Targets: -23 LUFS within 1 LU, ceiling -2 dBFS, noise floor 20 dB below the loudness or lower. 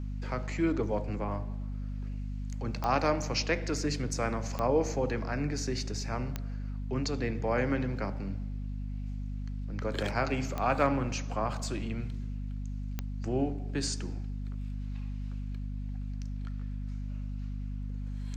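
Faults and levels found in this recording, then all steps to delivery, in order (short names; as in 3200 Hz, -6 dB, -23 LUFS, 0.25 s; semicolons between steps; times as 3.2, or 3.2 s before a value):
clicks 5; hum 50 Hz; harmonics up to 250 Hz; hum level -33 dBFS; loudness -33.5 LUFS; peak -14.5 dBFS; loudness target -23.0 LUFS
-> de-click; de-hum 50 Hz, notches 5; gain +10.5 dB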